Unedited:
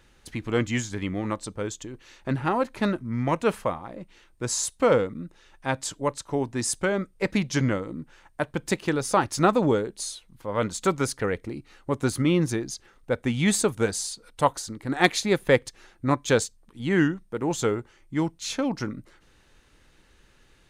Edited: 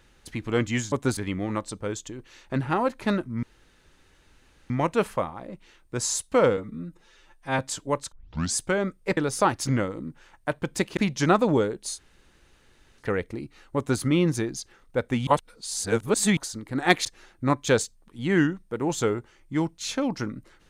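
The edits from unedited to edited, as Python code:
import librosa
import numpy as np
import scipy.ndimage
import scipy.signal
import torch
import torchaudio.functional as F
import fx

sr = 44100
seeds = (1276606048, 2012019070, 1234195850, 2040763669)

y = fx.edit(x, sr, fx.insert_room_tone(at_s=3.18, length_s=1.27),
    fx.stretch_span(start_s=5.05, length_s=0.68, factor=1.5),
    fx.tape_start(start_s=6.26, length_s=0.44),
    fx.swap(start_s=7.31, length_s=0.29, other_s=8.89, other_length_s=0.51),
    fx.room_tone_fill(start_s=10.1, length_s=1.05, crossfade_s=0.06),
    fx.duplicate(start_s=11.9, length_s=0.25, to_s=0.92),
    fx.reverse_span(start_s=13.41, length_s=1.1),
    fx.cut(start_s=15.19, length_s=0.47), tone=tone)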